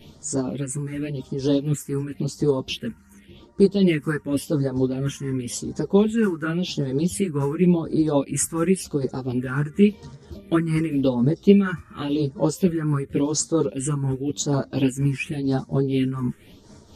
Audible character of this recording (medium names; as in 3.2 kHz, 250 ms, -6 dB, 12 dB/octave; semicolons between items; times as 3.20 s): phasing stages 4, 0.91 Hz, lowest notch 590–2700 Hz; tremolo triangle 4.2 Hz, depth 60%; a shimmering, thickened sound